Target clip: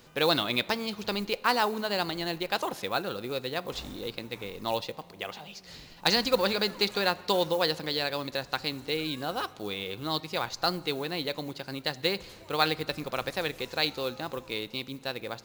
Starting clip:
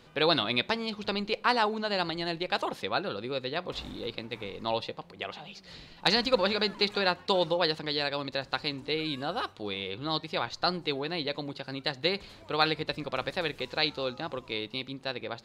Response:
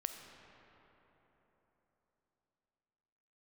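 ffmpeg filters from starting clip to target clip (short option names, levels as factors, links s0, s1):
-filter_complex "[0:a]acrusher=bits=7:mode=log:mix=0:aa=0.000001,asplit=2[s0][s1];[1:a]atrim=start_sample=2205,asetrate=70560,aresample=44100[s2];[s1][s2]afir=irnorm=-1:irlink=0,volume=0.398[s3];[s0][s3]amix=inputs=2:normalize=0,aexciter=amount=1.4:drive=8.9:freq=5400,volume=0.841"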